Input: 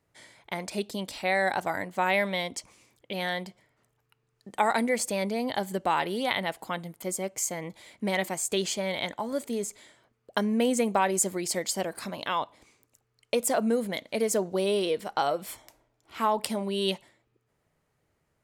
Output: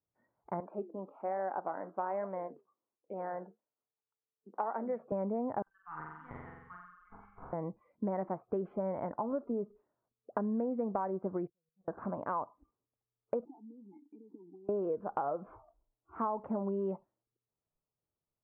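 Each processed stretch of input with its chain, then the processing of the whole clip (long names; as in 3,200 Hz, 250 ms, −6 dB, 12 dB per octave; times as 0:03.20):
0:00.60–0:05.12: high-pass filter 280 Hz + flanger 1.2 Hz, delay 4.9 ms, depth 7.5 ms, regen −84%
0:05.62–0:07.53: Bessel high-pass filter 2,200 Hz, order 8 + tube saturation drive 25 dB, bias 0.5 + flutter between parallel walls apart 7.7 metres, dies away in 1.3 s
0:11.47–0:11.88: tuned comb filter 160 Hz, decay 0.96 s, harmonics odd, mix 90% + gate with flip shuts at −38 dBFS, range −26 dB + RIAA equalisation playback
0:13.45–0:14.69: variable-slope delta modulation 32 kbit/s + downward compressor 8 to 1, threshold −35 dBFS + formant filter u
whole clip: Butterworth low-pass 1,300 Hz 36 dB per octave; noise reduction from a noise print of the clip's start 20 dB; downward compressor 6 to 1, threshold −31 dBFS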